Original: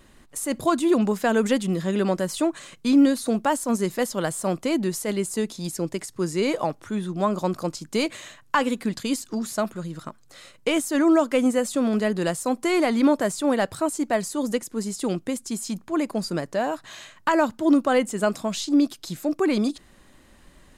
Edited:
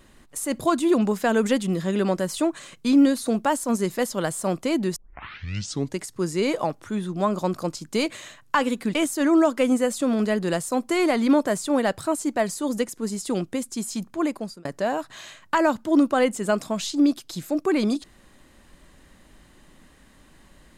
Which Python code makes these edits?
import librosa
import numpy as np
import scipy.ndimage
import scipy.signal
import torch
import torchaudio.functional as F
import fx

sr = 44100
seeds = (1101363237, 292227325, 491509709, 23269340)

y = fx.edit(x, sr, fx.tape_start(start_s=4.96, length_s=1.04),
    fx.cut(start_s=8.95, length_s=1.74),
    fx.fade_out_span(start_s=15.99, length_s=0.4), tone=tone)